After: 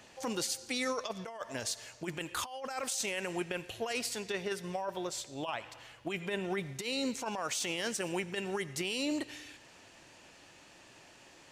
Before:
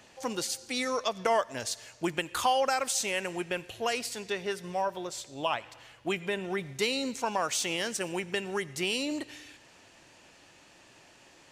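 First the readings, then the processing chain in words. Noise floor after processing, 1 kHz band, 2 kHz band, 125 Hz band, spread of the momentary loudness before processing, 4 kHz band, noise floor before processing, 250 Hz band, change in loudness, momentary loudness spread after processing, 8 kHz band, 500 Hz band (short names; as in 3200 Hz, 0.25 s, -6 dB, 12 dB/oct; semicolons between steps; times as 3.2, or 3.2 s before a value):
-58 dBFS, -9.0 dB, -4.5 dB, -1.5 dB, 8 LU, -4.5 dB, -58 dBFS, -2.0 dB, -5.0 dB, 22 LU, -3.0 dB, -5.5 dB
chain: negative-ratio compressor -31 dBFS, ratio -0.5; limiter -22 dBFS, peak gain reduction 5.5 dB; gain -2 dB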